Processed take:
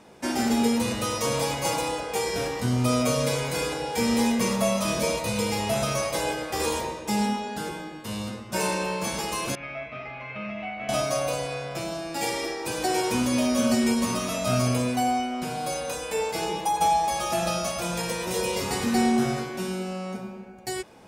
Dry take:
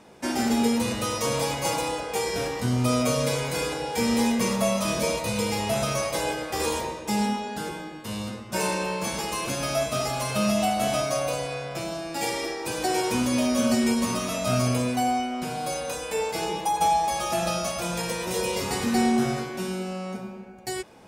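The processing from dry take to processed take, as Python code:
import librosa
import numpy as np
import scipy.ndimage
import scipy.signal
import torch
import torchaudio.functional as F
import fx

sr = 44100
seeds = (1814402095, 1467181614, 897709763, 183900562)

y = fx.ladder_lowpass(x, sr, hz=2400.0, resonance_pct=75, at=(9.55, 10.89))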